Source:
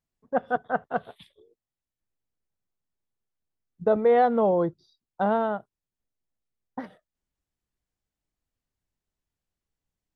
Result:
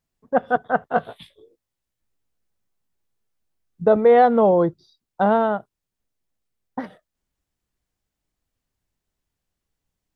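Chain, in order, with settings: 0.93–3.88 s: doubling 18 ms -5 dB; trim +6 dB

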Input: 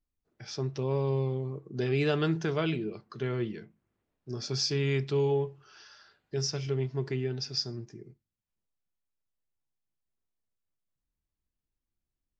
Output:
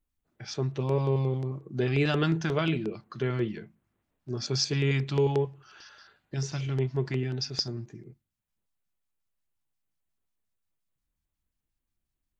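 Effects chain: LFO notch square 5.6 Hz 440–5200 Hz; trim +3.5 dB

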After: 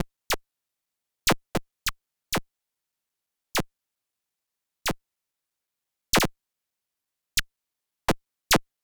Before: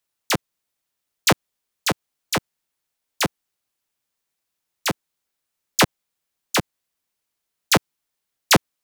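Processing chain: slices played last to first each 172 ms, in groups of 3; Chebyshev shaper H 6 -12 dB, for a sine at -6 dBFS; trim -5.5 dB

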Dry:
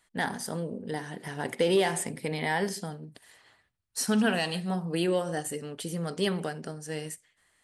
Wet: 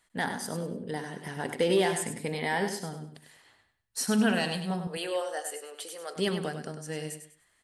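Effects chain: 4.87–6.16 s: high-pass 480 Hz 24 dB/octave; feedback delay 99 ms, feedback 29%, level -8.5 dB; trim -1 dB

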